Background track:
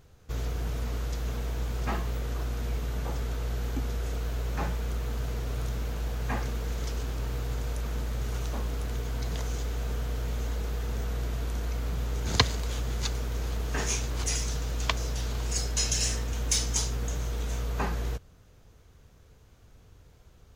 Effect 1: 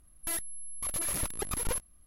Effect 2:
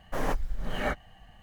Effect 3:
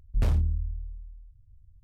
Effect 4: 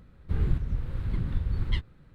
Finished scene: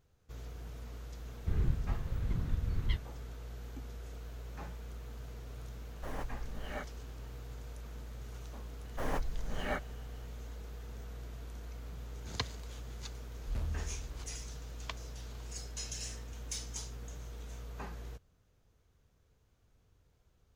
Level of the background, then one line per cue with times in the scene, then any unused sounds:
background track -14 dB
1.17 add 4 -5.5 dB
5.9 add 2 -12 dB
8.85 add 2 -6 dB
13.33 add 3 -13 dB
not used: 1

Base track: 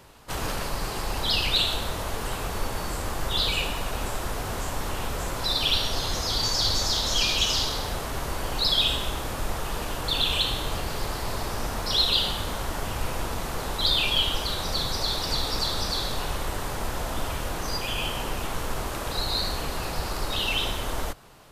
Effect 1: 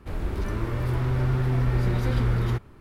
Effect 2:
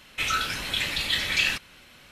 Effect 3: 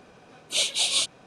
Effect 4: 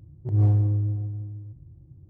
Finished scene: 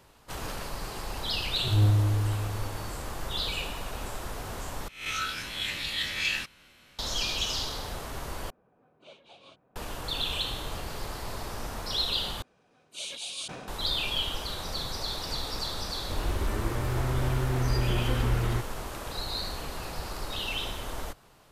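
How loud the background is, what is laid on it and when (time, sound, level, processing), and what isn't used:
base track -6.5 dB
1.39 add 4 -2 dB + HPF 63 Hz
4.88 replace with 2 -7.5 dB + spectral swells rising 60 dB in 0.47 s
8.5 replace with 3 -13.5 dB + LPF 1200 Hz
12.42 replace with 3 -14.5 dB + sustainer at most 34 dB/s
16.03 add 1 -1.5 dB + bell 160 Hz -7 dB

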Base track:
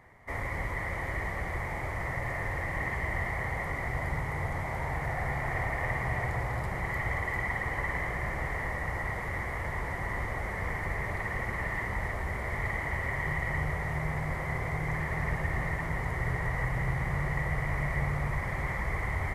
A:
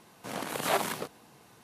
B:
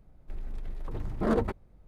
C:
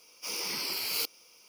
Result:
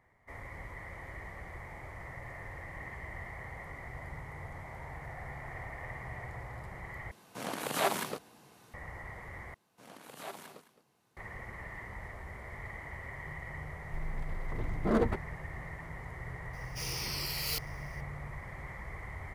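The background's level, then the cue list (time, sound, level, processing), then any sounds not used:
base track -11.5 dB
7.11 replace with A -2 dB
9.54 replace with A -16.5 dB + echo 0.214 s -14 dB
13.64 add B -1.5 dB
16.53 add C -4 dB

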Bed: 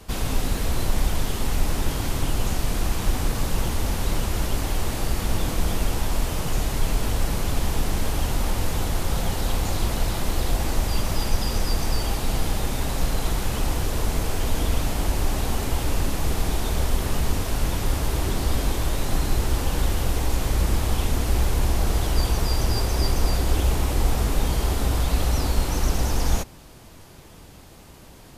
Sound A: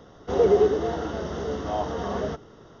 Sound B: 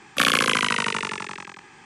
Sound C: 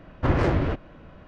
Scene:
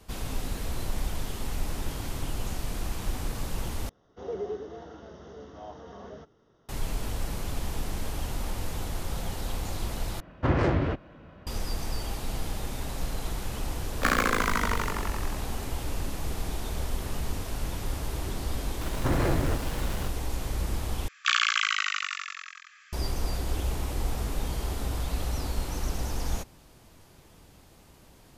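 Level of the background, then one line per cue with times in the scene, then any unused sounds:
bed -8.5 dB
3.89 replace with A -15.5 dB
10.2 replace with C -2 dB + HPF 44 Hz
13.85 add B -2 dB + median filter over 15 samples
18.81 add C -6 dB + zero-crossing step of -26.5 dBFS
21.08 replace with B -4 dB + brick-wall FIR band-pass 1100–7700 Hz

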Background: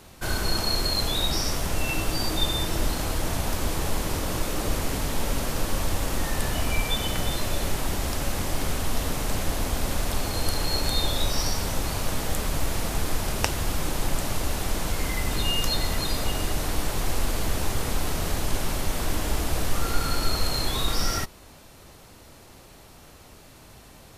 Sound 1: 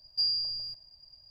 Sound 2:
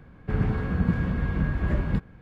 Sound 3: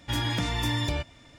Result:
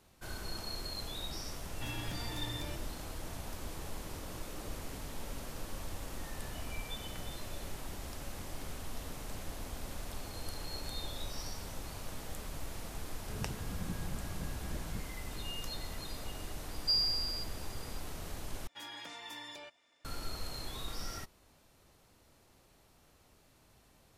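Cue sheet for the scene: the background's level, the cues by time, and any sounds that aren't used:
background -16 dB
1.73 add 3 -10.5 dB + compressor 2:1, threshold -31 dBFS
13.01 add 2 -17.5 dB
16.7 add 1 -2 dB
18.67 replace with 3 -14.5 dB + HPF 480 Hz

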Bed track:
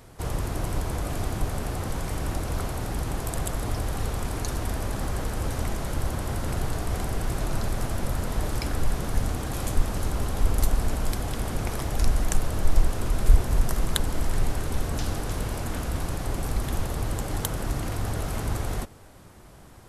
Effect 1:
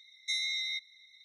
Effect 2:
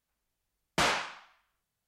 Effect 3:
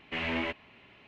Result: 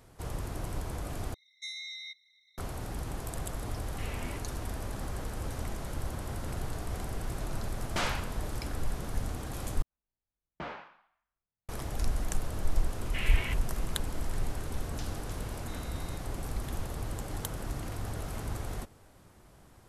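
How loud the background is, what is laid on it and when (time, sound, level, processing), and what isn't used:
bed track -8 dB
1.34 replace with 1 -8 dB
3.86 add 3 -13 dB
7.18 add 2 -5.5 dB
9.82 replace with 2 -8.5 dB + tape spacing loss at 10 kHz 40 dB
13.02 add 3 -1.5 dB + HPF 1400 Hz
15.4 add 1 -15 dB + compressor 3:1, threshold -40 dBFS

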